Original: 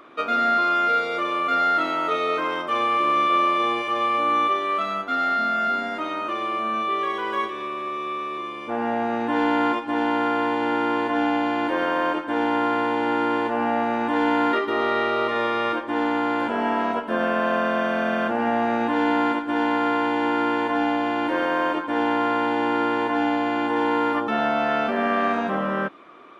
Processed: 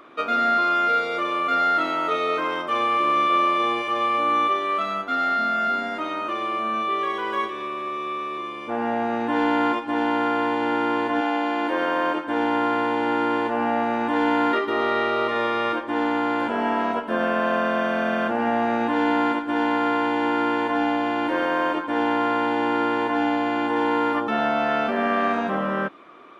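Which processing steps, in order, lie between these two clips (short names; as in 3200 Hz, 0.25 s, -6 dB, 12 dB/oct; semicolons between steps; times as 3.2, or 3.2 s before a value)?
11.2–12.25 HPF 350 Hz -> 110 Hz 12 dB/oct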